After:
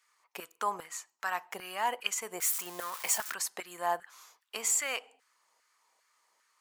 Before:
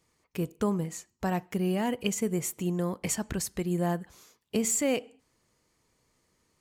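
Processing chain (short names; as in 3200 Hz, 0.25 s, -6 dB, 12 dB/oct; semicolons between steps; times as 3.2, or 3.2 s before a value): 2.4–3.34 switching spikes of -29 dBFS; LFO high-pass saw down 2.5 Hz 740–1500 Hz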